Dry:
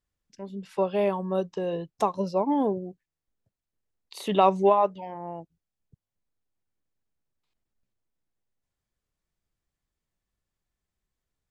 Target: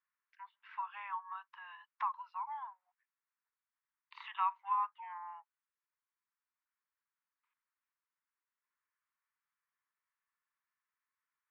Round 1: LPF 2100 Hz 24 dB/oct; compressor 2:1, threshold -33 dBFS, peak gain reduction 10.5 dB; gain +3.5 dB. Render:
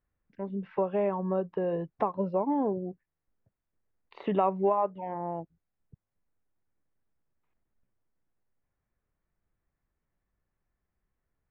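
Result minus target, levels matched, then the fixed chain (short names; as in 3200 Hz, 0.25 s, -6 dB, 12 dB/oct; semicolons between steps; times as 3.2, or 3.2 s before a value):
1000 Hz band -4.5 dB
LPF 2100 Hz 24 dB/oct; compressor 2:1, threshold -33 dBFS, peak gain reduction 10.5 dB; steep high-pass 940 Hz 72 dB/oct; gain +3.5 dB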